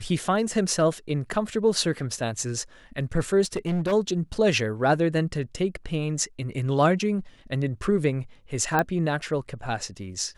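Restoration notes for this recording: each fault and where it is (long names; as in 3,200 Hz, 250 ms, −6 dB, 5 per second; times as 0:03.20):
0:03.43–0:03.93: clipping −22 dBFS
0:08.79: click −10 dBFS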